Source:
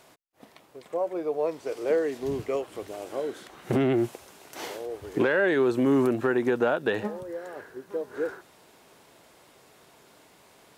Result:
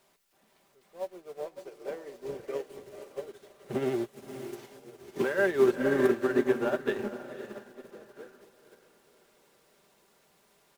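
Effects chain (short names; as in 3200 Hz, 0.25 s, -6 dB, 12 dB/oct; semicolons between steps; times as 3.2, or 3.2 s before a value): zero-crossing step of -35.5 dBFS; comb 5.1 ms, depth 47%; diffused feedback echo 0.521 s, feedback 55%, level -4 dB; upward expander 2.5:1, over -33 dBFS; gain -2 dB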